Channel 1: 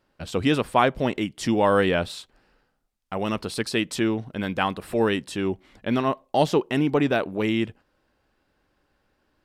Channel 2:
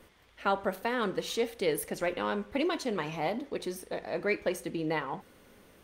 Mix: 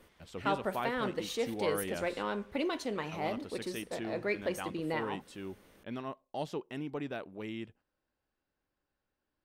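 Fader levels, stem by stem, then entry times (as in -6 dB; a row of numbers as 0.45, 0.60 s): -17.0, -3.5 dB; 0.00, 0.00 s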